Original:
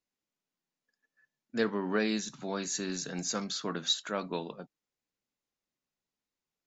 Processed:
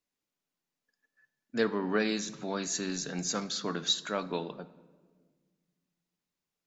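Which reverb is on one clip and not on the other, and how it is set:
rectangular room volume 1,700 cubic metres, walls mixed, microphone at 0.35 metres
level +1 dB

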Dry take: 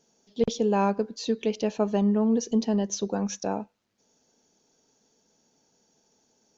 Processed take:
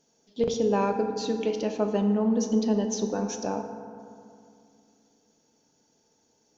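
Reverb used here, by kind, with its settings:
feedback delay network reverb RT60 2.4 s, low-frequency decay 1.25×, high-frequency decay 0.4×, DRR 4.5 dB
level −1.5 dB

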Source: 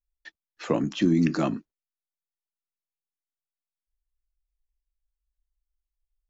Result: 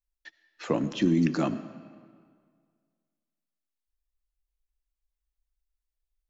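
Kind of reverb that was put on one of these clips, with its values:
comb and all-pass reverb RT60 1.9 s, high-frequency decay 0.8×, pre-delay 40 ms, DRR 14 dB
level −2 dB

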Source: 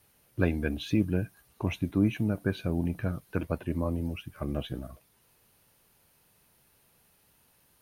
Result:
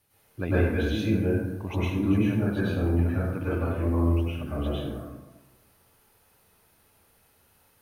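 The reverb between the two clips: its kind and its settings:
dense smooth reverb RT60 1.1 s, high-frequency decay 0.5×, pre-delay 90 ms, DRR −10 dB
level −6 dB

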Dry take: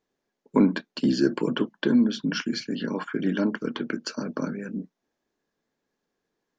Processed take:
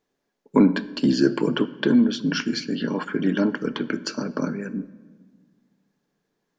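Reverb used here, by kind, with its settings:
rectangular room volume 1,300 cubic metres, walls mixed, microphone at 0.33 metres
level +3 dB

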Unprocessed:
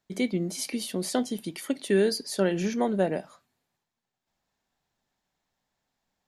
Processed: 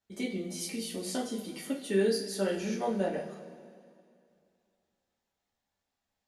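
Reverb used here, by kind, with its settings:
coupled-rooms reverb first 0.3 s, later 2.4 s, from −18 dB, DRR −5.5 dB
level −11 dB

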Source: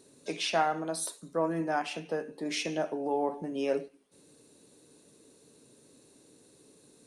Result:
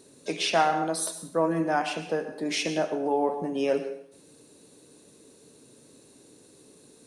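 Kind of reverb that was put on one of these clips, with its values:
dense smooth reverb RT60 0.57 s, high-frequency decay 0.9×, pre-delay 95 ms, DRR 10.5 dB
level +4.5 dB

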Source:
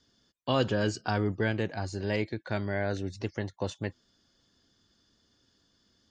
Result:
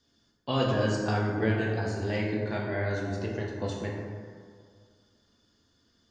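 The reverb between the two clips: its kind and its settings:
dense smooth reverb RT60 2 s, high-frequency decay 0.4×, DRR −3 dB
level −3.5 dB

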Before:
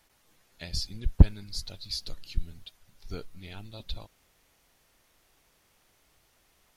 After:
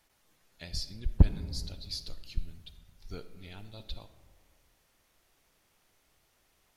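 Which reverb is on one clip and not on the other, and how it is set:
comb and all-pass reverb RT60 1.8 s, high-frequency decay 0.35×, pre-delay 10 ms, DRR 11 dB
level −4 dB

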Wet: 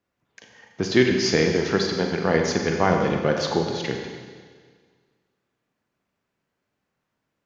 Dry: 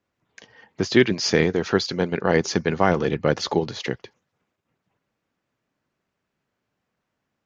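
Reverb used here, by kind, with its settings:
four-comb reverb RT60 1.7 s, combs from 32 ms, DRR 2.5 dB
level −2 dB

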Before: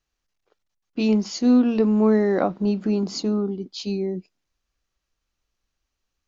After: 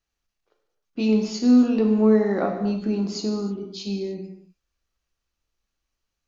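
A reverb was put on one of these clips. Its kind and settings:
reverb whose tail is shaped and stops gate 340 ms falling, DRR 2.5 dB
level −3.5 dB

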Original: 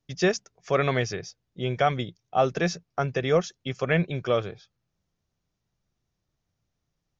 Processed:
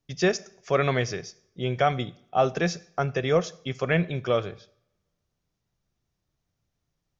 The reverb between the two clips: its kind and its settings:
coupled-rooms reverb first 0.59 s, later 1.7 s, from −27 dB, DRR 16 dB

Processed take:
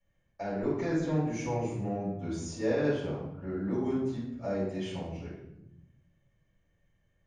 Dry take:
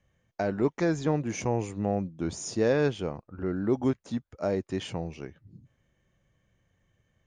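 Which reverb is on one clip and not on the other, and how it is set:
rectangular room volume 250 cubic metres, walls mixed, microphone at 5.9 metres
level −19 dB

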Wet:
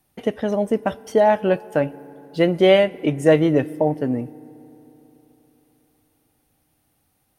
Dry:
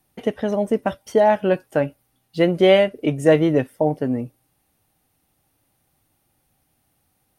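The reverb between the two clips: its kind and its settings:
feedback delay network reverb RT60 3.8 s, high-frequency decay 0.45×, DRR 20 dB

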